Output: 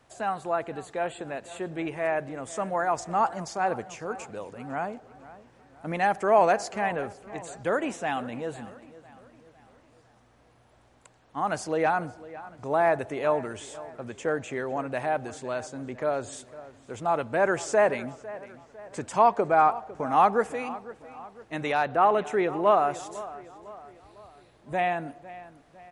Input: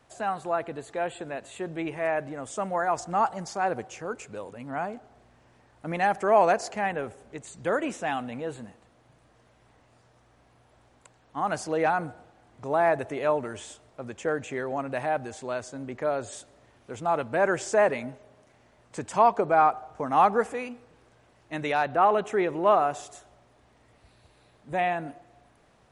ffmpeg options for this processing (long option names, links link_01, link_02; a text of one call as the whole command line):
ffmpeg -i in.wav -filter_complex "[0:a]asplit=2[link_01][link_02];[link_02]adelay=503,lowpass=frequency=3600:poles=1,volume=-17dB,asplit=2[link_03][link_04];[link_04]adelay=503,lowpass=frequency=3600:poles=1,volume=0.49,asplit=2[link_05][link_06];[link_06]adelay=503,lowpass=frequency=3600:poles=1,volume=0.49,asplit=2[link_07][link_08];[link_08]adelay=503,lowpass=frequency=3600:poles=1,volume=0.49[link_09];[link_01][link_03][link_05][link_07][link_09]amix=inputs=5:normalize=0" out.wav